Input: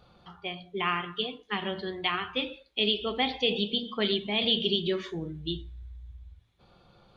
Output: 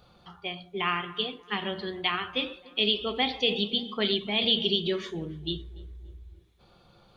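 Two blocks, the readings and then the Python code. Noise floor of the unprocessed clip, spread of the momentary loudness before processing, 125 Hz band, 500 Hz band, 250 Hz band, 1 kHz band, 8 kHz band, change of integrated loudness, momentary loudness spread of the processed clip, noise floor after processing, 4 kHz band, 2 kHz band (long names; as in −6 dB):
−63 dBFS, 13 LU, 0.0 dB, 0.0 dB, 0.0 dB, +0.5 dB, can't be measured, +1.0 dB, 13 LU, −59 dBFS, +2.0 dB, +1.0 dB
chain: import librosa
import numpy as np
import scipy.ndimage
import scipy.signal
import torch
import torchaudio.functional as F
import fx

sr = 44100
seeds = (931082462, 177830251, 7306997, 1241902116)

y = fx.high_shelf(x, sr, hz=5600.0, db=7.5)
y = fx.echo_tape(y, sr, ms=290, feedback_pct=56, wet_db=-19, lp_hz=1500.0, drive_db=6.0, wow_cents=10)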